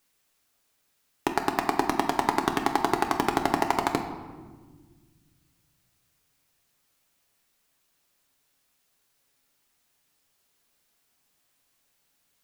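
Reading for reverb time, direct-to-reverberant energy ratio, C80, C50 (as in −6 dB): 1.4 s, 4.0 dB, 10.0 dB, 8.5 dB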